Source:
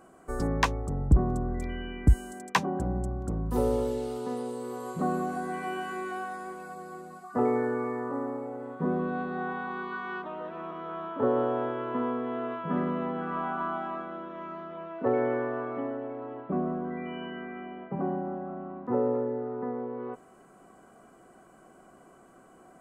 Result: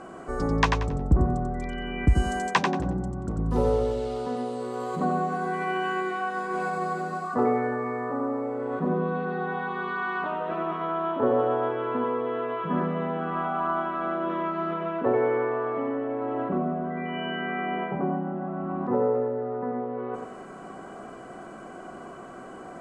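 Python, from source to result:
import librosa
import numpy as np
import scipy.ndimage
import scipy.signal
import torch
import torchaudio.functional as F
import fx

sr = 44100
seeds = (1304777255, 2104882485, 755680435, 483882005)

p1 = scipy.signal.sosfilt(scipy.signal.butter(2, 5600.0, 'lowpass', fs=sr, output='sos'), x)
p2 = fx.low_shelf(p1, sr, hz=150.0, db=-3.5)
p3 = fx.over_compress(p2, sr, threshold_db=-42.0, ratio=-0.5)
p4 = p2 + F.gain(torch.from_numpy(p3), -2.0).numpy()
p5 = fx.echo_feedback(p4, sr, ms=91, feedback_pct=28, wet_db=-5.0)
y = F.gain(torch.from_numpy(p5), 2.5).numpy()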